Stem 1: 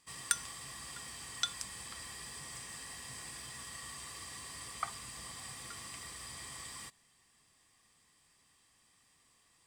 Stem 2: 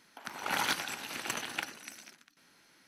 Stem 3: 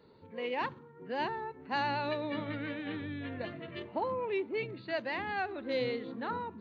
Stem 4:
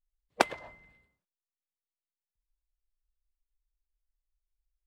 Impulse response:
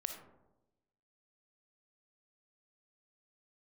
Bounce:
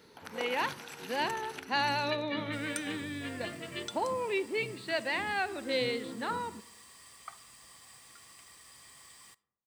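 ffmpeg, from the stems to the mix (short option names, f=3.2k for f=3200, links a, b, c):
-filter_complex "[0:a]lowshelf=f=240:g=-8,acrusher=bits=7:mix=0:aa=0.5,adelay=2450,volume=-9.5dB,asplit=2[a][b];[b]volume=-13dB[c];[1:a]acompressor=threshold=-40dB:ratio=4,volume=-2dB[d];[2:a]highshelf=f=2.3k:g=10,bandreject=f=50:t=h:w=6,bandreject=f=100:t=h:w=6,bandreject=f=150:t=h:w=6,volume=-1.5dB,asplit=2[e][f];[f]volume=-10.5dB[g];[3:a]volume=-17.5dB[h];[4:a]atrim=start_sample=2205[i];[c][g]amix=inputs=2:normalize=0[j];[j][i]afir=irnorm=-1:irlink=0[k];[a][d][e][h][k]amix=inputs=5:normalize=0"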